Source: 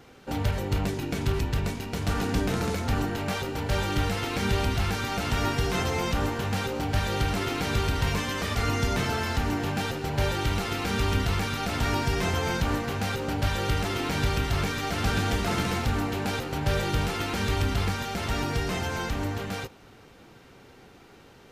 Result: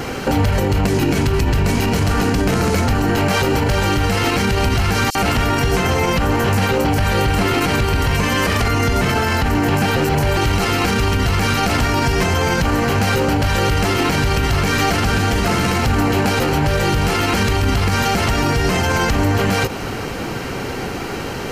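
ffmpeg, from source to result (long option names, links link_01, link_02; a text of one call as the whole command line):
ffmpeg -i in.wav -filter_complex "[0:a]asettb=1/sr,asplit=3[link_01][link_02][link_03];[link_01]atrim=end=5.104[link_04];[link_02]atrim=start=5.1:end=10.37,asetpts=PTS-STARTPTS,afade=type=in:duration=0.004:curve=qsin,afade=type=out:start_time=5.266:duration=0.004:curve=qsin,acrossover=split=5600[link_05][link_06];[link_05]adelay=50[link_07];[link_07][link_06]amix=inputs=2:normalize=0,atrim=end_sample=232407[link_08];[link_03]atrim=start=10.366[link_09];[link_04][link_08]acrossfade=duration=0.004:curve1=hsin:curve2=qsin[link_10];[link_10][link_09]acrossfade=duration=0.004:curve1=qsin:curve2=hsin,bandreject=frequency=3600:width=8.6,acompressor=threshold=-34dB:ratio=6,alimiter=level_in=34.5dB:limit=-1dB:release=50:level=0:latency=1,volume=-7.5dB" out.wav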